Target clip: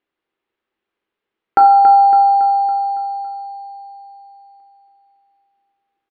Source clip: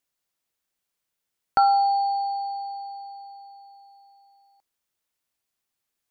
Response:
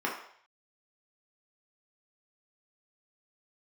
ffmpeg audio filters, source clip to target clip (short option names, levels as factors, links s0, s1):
-filter_complex "[0:a]lowpass=f=3300:w=0.5412,lowpass=f=3300:w=1.3066,equalizer=f=340:t=o:w=0.86:g=10,aecho=1:1:279|558|837|1116|1395|1674:0.355|0.195|0.107|0.059|0.0325|0.0179,asplit=2[s0][s1];[1:a]atrim=start_sample=2205[s2];[s1][s2]afir=irnorm=-1:irlink=0,volume=0.299[s3];[s0][s3]amix=inputs=2:normalize=0,volume=1.33"